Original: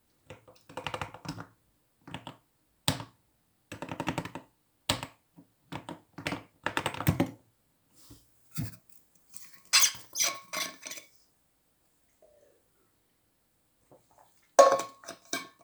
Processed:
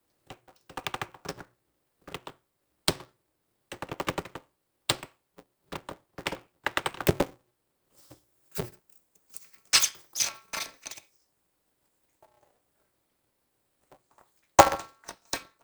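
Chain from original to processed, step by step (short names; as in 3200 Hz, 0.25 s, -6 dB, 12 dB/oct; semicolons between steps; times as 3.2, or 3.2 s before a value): transient shaper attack +7 dB, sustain -2 dB; frequency shift +130 Hz; polarity switched at an audio rate 120 Hz; gain -4 dB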